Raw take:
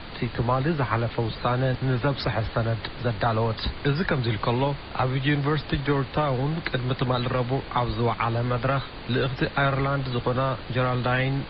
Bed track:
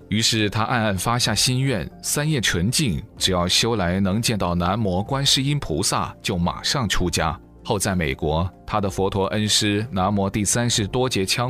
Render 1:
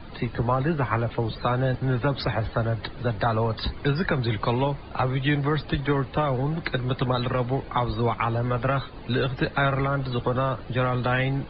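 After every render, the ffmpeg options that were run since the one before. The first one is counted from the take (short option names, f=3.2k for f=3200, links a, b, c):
-af "afftdn=nr=12:nf=-38"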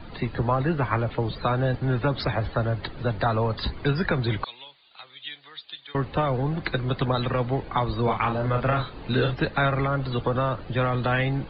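-filter_complex "[0:a]asettb=1/sr,asplit=3[a][b][c];[a]atrim=end=4.444[d];[b]atrim=start=4.44:end=5.95,asetpts=PTS-STARTPTS,afade=t=in:d=0.004:c=qsin,afade=t=out:st=1.506:d=0.004:c=qsin,bandpass=f=3.6k:t=q:w=3.6[e];[c]atrim=start=5.946[f];[d][e]acrossfade=d=0.004:c1=hsin:c2=qsin[g];[g][f]acrossfade=d=0.004:c1=qsin:c2=hsin,asettb=1/sr,asplit=3[h][i][j];[h]atrim=end=8.034[k];[i]atrim=start=8.03:end=9.33,asetpts=PTS-STARTPTS,afade=t=in:d=0.004:c=qsin,afade=t=out:st=1.296:d=0.004:c=qsin,asplit=2[l][m];[m]adelay=39,volume=-5dB[n];[l][n]amix=inputs=2:normalize=0,atrim=end_sample=57330[o];[j]atrim=start=9.326[p];[k][o]acrossfade=d=0.004:c1=hsin:c2=qsin[q];[q][p]acrossfade=d=0.004:c1=qsin:c2=hsin"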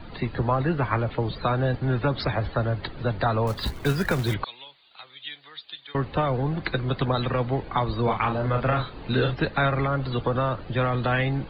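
-filter_complex "[0:a]asettb=1/sr,asplit=3[a][b][c];[a]atrim=end=3.474[d];[b]atrim=start=3.47:end=4.34,asetpts=PTS-STARTPTS,afade=t=in:d=0.004:c=qsin,afade=t=out:st=0.866:d=0.004:c=qsin,acrusher=bits=4:mode=log:mix=0:aa=0.000001[e];[c]atrim=start=4.336[f];[d][e]acrossfade=d=0.004:c1=hsin:c2=qsin[g];[g][f]acrossfade=d=0.004:c1=qsin:c2=hsin"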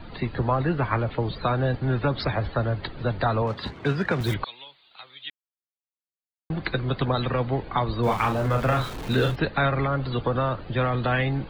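-filter_complex "[0:a]asettb=1/sr,asplit=3[a][b][c];[a]atrim=end=3.424[d];[b]atrim=start=3.42:end=4.21,asetpts=PTS-STARTPTS,afade=t=in:d=0.004:c=qsin,afade=t=out:st=0.786:d=0.004:c=qsin,highpass=110,lowpass=3.5k[e];[c]atrim=start=4.206[f];[d][e]acrossfade=d=0.004:c1=hsin:c2=qsin[g];[g][f]acrossfade=d=0.004:c1=qsin:c2=hsin,asettb=1/sr,asplit=3[h][i][j];[h]atrim=end=8.034[k];[i]atrim=start=8.03:end=9.36,asetpts=PTS-STARTPTS,afade=t=in:d=0.004:c=qsin,afade=t=out:st=1.326:d=0.004:c=qsin,aeval=exprs='val(0)+0.5*0.02*sgn(val(0))':c=same[l];[j]atrim=start=9.356[m];[k][l]acrossfade=d=0.004:c1=hsin:c2=qsin[n];[n][m]acrossfade=d=0.004:c1=qsin:c2=hsin,asplit=3[o][p][q];[o]atrim=end=5.3,asetpts=PTS-STARTPTS,afade=t=out:st=5.296:d=0.004:c=hsin[r];[p]atrim=start=5.3:end=6.5,asetpts=PTS-STARTPTS,volume=0[s];[q]atrim=start=6.5,asetpts=PTS-STARTPTS,afade=t=in:d=0.004:c=hsin[t];[r][s][t]concat=n=3:v=0:a=1"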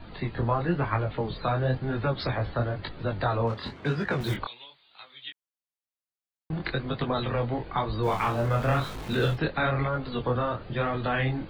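-af "flanger=delay=19:depth=7:speed=1"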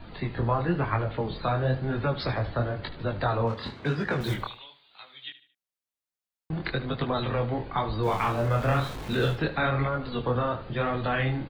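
-af "aecho=1:1:75|150|225:0.188|0.0678|0.0244"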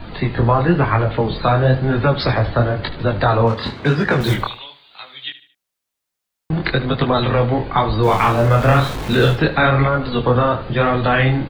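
-af "volume=11.5dB,alimiter=limit=-3dB:level=0:latency=1"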